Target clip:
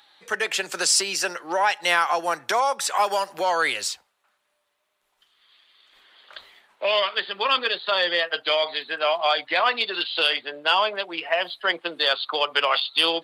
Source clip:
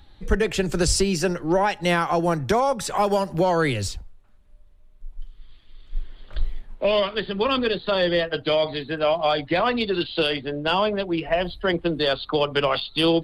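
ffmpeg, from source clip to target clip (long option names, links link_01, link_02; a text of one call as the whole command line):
ffmpeg -i in.wav -af "highpass=900,volume=4.5dB" out.wav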